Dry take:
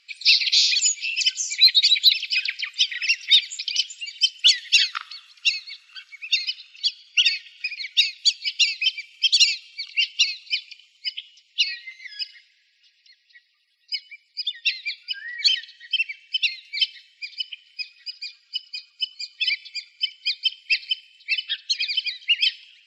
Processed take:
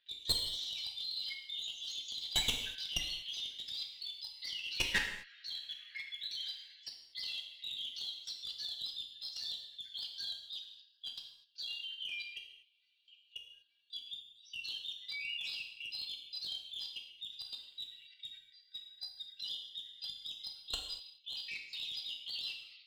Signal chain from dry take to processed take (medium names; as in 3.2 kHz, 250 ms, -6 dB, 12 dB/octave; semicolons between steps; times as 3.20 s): frequency axis rescaled in octaves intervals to 119%; steep low-pass 3.3 kHz 36 dB/octave; level held to a coarse grid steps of 18 dB; one-sided clip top -49 dBFS, bottom -32 dBFS; gated-style reverb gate 270 ms falling, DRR 2 dB; trim +11.5 dB